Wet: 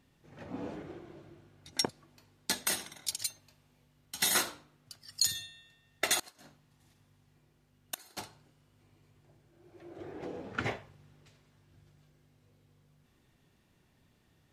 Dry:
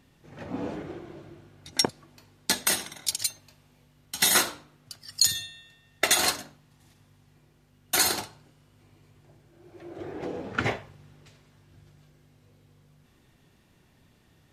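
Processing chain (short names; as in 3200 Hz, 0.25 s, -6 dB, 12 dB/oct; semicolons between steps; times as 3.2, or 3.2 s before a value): 6.15–8.17 flipped gate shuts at -13 dBFS, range -27 dB; gain -7 dB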